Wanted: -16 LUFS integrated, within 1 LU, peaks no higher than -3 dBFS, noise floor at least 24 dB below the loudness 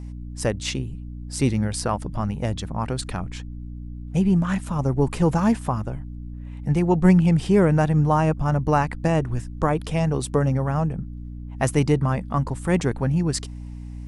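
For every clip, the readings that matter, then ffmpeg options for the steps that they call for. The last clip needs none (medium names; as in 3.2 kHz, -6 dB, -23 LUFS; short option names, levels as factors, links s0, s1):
hum 60 Hz; highest harmonic 300 Hz; hum level -33 dBFS; loudness -22.5 LUFS; peak level -4.0 dBFS; loudness target -16.0 LUFS
-> -af "bandreject=f=60:t=h:w=4,bandreject=f=120:t=h:w=4,bandreject=f=180:t=h:w=4,bandreject=f=240:t=h:w=4,bandreject=f=300:t=h:w=4"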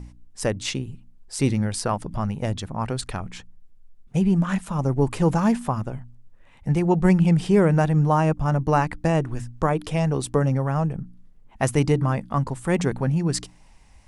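hum not found; loudness -23.0 LUFS; peak level -5.0 dBFS; loudness target -16.0 LUFS
-> -af "volume=2.24,alimiter=limit=0.708:level=0:latency=1"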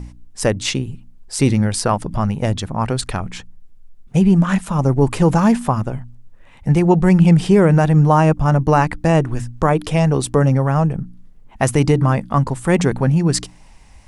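loudness -16.5 LUFS; peak level -3.0 dBFS; noise floor -43 dBFS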